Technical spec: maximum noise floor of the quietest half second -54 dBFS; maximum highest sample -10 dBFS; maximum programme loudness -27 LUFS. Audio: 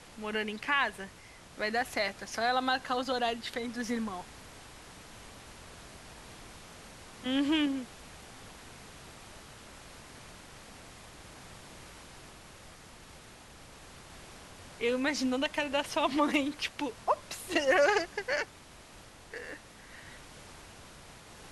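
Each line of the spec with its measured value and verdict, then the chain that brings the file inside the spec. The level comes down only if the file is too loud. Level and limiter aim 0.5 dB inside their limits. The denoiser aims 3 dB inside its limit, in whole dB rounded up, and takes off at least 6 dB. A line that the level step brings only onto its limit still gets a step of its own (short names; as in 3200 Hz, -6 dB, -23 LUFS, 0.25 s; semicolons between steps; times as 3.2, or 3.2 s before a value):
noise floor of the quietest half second -53 dBFS: fail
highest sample -13.5 dBFS: OK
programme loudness -31.5 LUFS: OK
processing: denoiser 6 dB, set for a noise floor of -53 dBFS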